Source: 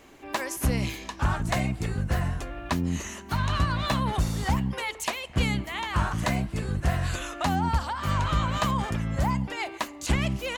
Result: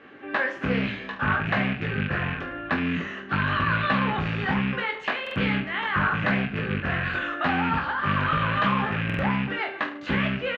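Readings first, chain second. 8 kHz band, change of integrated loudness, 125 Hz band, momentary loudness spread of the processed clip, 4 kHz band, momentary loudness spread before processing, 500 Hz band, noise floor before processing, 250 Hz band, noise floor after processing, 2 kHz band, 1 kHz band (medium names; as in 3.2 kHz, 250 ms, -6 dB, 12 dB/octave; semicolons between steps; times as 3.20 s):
under -25 dB, +2.5 dB, -2.0 dB, 5 LU, +0.5 dB, 6 LU, +3.0 dB, -44 dBFS, +3.0 dB, -39 dBFS, +8.5 dB, +3.0 dB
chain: rattle on loud lows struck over -29 dBFS, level -23 dBFS; band-stop 960 Hz, Q 5.7; in parallel at -1.5 dB: saturation -22.5 dBFS, distortion -13 dB; on the sum: cabinet simulation 180–2800 Hz, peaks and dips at 330 Hz -5 dB, 690 Hz -8 dB, 1.6 kHz +6 dB, 2.3 kHz -5 dB; on a send: reverse bouncing-ball echo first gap 20 ms, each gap 1.2×, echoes 5; on the sum: buffer glitch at 5.22/9.05 s, samples 2048, times 2; loudspeaker Doppler distortion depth 0.13 ms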